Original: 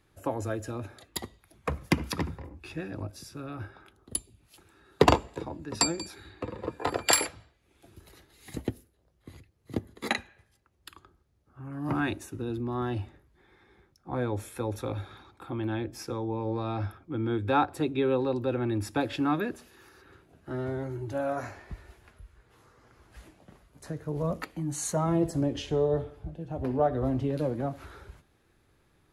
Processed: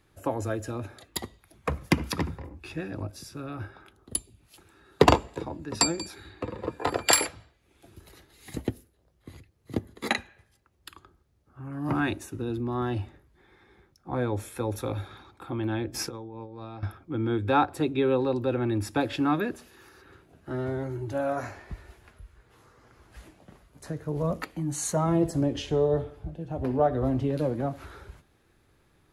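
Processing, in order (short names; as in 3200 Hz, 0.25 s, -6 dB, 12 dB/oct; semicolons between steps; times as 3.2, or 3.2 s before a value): 14.68–15.08 high shelf 12000 Hz +10.5 dB; 15.94–16.83 negative-ratio compressor -38 dBFS, ratio -0.5; gain +2 dB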